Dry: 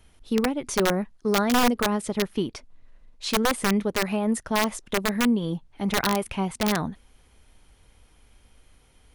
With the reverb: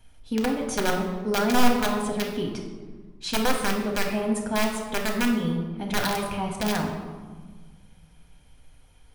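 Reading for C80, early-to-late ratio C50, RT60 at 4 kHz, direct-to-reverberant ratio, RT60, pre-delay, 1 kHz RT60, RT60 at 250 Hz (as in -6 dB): 7.0 dB, 5.0 dB, 0.85 s, 1.0 dB, 1.5 s, 4 ms, 1.4 s, 2.1 s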